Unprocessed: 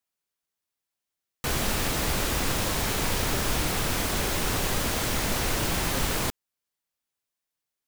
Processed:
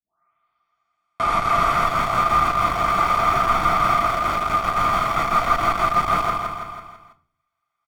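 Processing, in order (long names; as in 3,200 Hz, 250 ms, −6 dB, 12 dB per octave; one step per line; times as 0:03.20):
turntable start at the beginning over 2.24 s
parametric band 1,700 Hz +14.5 dB 2.7 octaves
comb filter 0.9 ms, depth 73%
repeating echo 165 ms, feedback 45%, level −5.5 dB
rectangular room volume 370 cubic metres, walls furnished, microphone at 0.81 metres
in parallel at +2.5 dB: downward compressor, threshold −28 dBFS, peak gain reduction 18 dB
on the sum: tube saturation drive 11 dB, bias 0.8
high-shelf EQ 2,300 Hz −11 dB
hollow resonant body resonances 670/1,200 Hz, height 18 dB, ringing for 40 ms
level −5.5 dB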